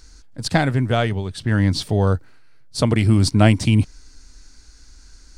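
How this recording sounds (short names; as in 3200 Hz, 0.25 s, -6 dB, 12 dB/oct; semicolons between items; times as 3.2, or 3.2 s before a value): noise floor -47 dBFS; spectral tilt -6.0 dB/oct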